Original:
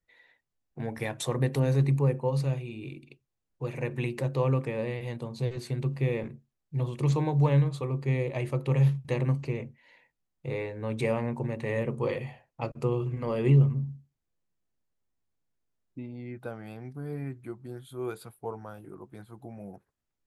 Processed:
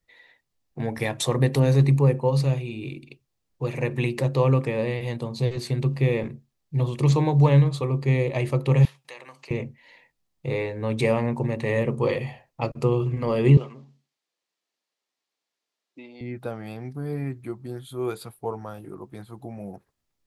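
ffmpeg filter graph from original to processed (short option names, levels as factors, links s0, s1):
-filter_complex "[0:a]asettb=1/sr,asplit=3[s0][s1][s2];[s0]atrim=end=8.854[s3];[s1]atrim=start=8.85:end=9.51,asetpts=PTS-STARTPTS,afade=t=in:d=0.004:c=qsin,afade=t=out:st=0.656:d=0.004:c=qsin,highpass=910,acompressor=threshold=0.00282:ratio=2:attack=3.2:release=140:knee=1:detection=peak[s4];[s2]atrim=start=9.506[s5];[s3][s4]acrossfade=d=0.004:c1=hsin:c2=qsin[s6];[s6][s5]acrossfade=d=0.004:c1=qsin:c2=hsin,asettb=1/sr,asplit=3[s7][s8][s9];[s7]atrim=end=13.574[s10];[s8]atrim=start=13.57:end=16.21,asetpts=PTS-STARTPTS,afade=t=in:d=0.004:c=qsin,afade=t=out:st=2.636:d=0.004:c=qsin,highpass=290,lowpass=3800,aemphasis=mode=production:type=riaa[s11];[s9]atrim=start=16.206[s12];[s10][s11]acrossfade=d=0.004:c1=hsin:c2=qsin[s13];[s13][s12]acrossfade=d=0.004:c1=qsin:c2=hsin,equalizer=f=4500:t=o:w=0.87:g=3.5,bandreject=f=1500:w=14,volume=2"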